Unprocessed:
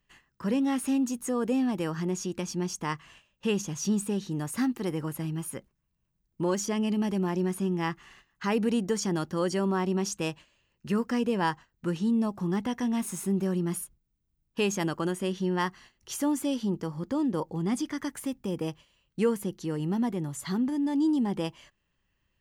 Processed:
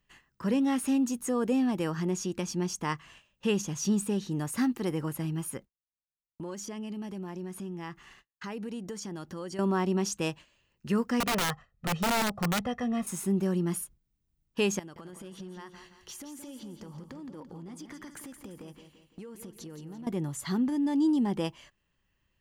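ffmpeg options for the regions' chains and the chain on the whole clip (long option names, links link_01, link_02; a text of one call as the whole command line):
ffmpeg -i in.wav -filter_complex "[0:a]asettb=1/sr,asplit=3[link_01][link_02][link_03];[link_01]atrim=end=5.574[link_04];[link_02]atrim=start=5.57:end=9.59,asetpts=PTS-STARTPTS,afade=type=in:duration=0.004:curve=qsin,afade=type=out:start_time=4.016:duration=0.004:curve=qsin,agate=range=-33dB:threshold=-53dB:ratio=3:release=100:detection=peak,acompressor=threshold=-40dB:ratio=2.5:attack=3.2:release=140:knee=1:detection=peak[link_05];[link_03]atrim=start=9.586[link_06];[link_04][link_05]acrossfade=duration=0.004:curve1=hsin:curve2=qsin[link_07];[link_07][link_06]acrossfade=duration=0.004:curve1=qsin:curve2=hsin,asettb=1/sr,asplit=3[link_08][link_09][link_10];[link_08]atrim=end=11.204[link_11];[link_09]atrim=start=11.2:end=13.07,asetpts=PTS-STARTPTS,afade=type=in:duration=0.004:curve=qsin,afade=type=out:start_time=1.866:duration=0.004:curve=qsin,lowpass=frequency=1800:poles=1,aecho=1:1:1.6:0.91,atrim=end_sample=82467,aeval=exprs='(mod(14.1*val(0)+1,2)-1)/14.1':channel_layout=same[link_12];[link_10]atrim=start=13.066[link_13];[link_11][link_12]acrossfade=duration=0.004:curve1=hsin:curve2=qsin[link_14];[link_14][link_13]acrossfade=duration=0.004:curve1=qsin:curve2=hsin,asettb=1/sr,asplit=3[link_15][link_16][link_17];[link_15]atrim=end=14.794[link_18];[link_16]atrim=start=14.79:end=20.07,asetpts=PTS-STARTPTS,afade=type=in:duration=0.004:curve=qsin,afade=type=out:start_time=5.276:duration=0.004:curve=qsin,acompressor=threshold=-40dB:ratio=20:attack=3.2:release=140:knee=1:detection=peak,aecho=1:1:170|340|510|680|850:0.355|0.156|0.0687|0.0302|0.0133,atrim=end_sample=232848,aeval=exprs='clip(val(0),-1,0.0126)':channel_layout=same[link_19];[link_17]atrim=start=20.066[link_20];[link_18][link_19]acrossfade=duration=0.004:curve1=hsin:curve2=qsin[link_21];[link_21][link_20]acrossfade=duration=0.004:curve1=qsin:curve2=hsin" out.wav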